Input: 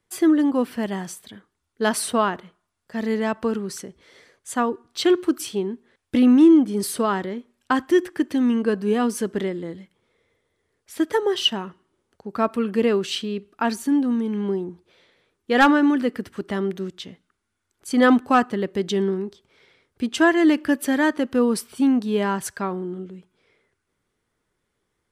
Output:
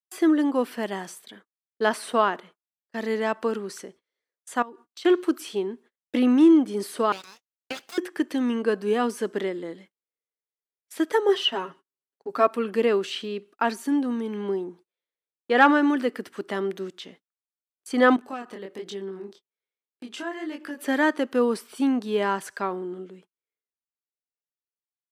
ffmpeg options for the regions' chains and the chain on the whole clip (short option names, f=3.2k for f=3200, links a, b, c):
-filter_complex "[0:a]asettb=1/sr,asplit=3[a][b][c];[a]atrim=end=4.624[d];[b]atrim=start=4.62:end=5.05,asetpts=PTS-STARTPTS,afade=t=in:d=0.004:c=qsin,afade=t=out:st=0.426:d=0.004:c=qsin,equalizer=f=460:t=o:w=0.63:g=-5.5,acompressor=threshold=-37dB:ratio=5:attack=3.2:release=140:knee=1:detection=peak[e];[c]atrim=start=5.046[f];[d][e]acrossfade=d=0.004:c1=hsin:c2=qsin[g];[g][f]acrossfade=d=0.004:c1=qsin:c2=hsin,asettb=1/sr,asplit=3[h][i][j];[h]atrim=end=7.124[k];[i]atrim=start=7.12:end=7.98,asetpts=PTS-STARTPTS,afade=t=in:d=0.004:c=qsin,afade=t=out:st=0.856:d=0.004:c=qsin,highpass=1.5k,equalizer=f=3.2k:w=1.8:g=4,aeval=exprs='abs(val(0))':c=same[l];[j]atrim=start=7.976[m];[k][l]acrossfade=d=0.004:c1=hsin:c2=qsin[n];[n][m]acrossfade=d=0.004:c1=qsin:c2=hsin,asettb=1/sr,asplit=3[o][p][q];[o]atrim=end=11.284[r];[p]atrim=start=11.28:end=12.47,asetpts=PTS-STARTPTS,afade=t=in:d=0.004:c=qsin,afade=t=out:st=1.186:d=0.004:c=qsin,lowshelf=f=150:g=6,bandreject=f=210:w=6.7,aecho=1:1:7.3:0.72,atrim=end_sample=52479[s];[q]atrim=start=12.466[t];[r][s]acrossfade=d=0.004:c1=hsin:c2=qsin[u];[u][t]acrossfade=d=0.004:c1=qsin:c2=hsin,asettb=1/sr,asplit=3[v][w][x];[v]atrim=end=18.164[y];[w]atrim=start=18.16:end=20.78,asetpts=PTS-STARTPTS,afade=t=in:d=0.004:c=qsin,afade=t=out:st=2.616:d=0.004:c=qsin,acompressor=threshold=-27dB:ratio=4:attack=3.2:release=140:knee=1:detection=peak,flanger=delay=20:depth=6.7:speed=1.2[z];[x]atrim=start=20.776[aa];[y][z]acrossfade=d=0.004:c1=hsin:c2=qsin[ab];[ab][aa]acrossfade=d=0.004:c1=qsin:c2=hsin,agate=range=-35dB:threshold=-45dB:ratio=16:detection=peak,acrossover=split=2900[ac][ad];[ad]acompressor=threshold=-38dB:ratio=4:attack=1:release=60[ae];[ac][ae]amix=inputs=2:normalize=0,highpass=310"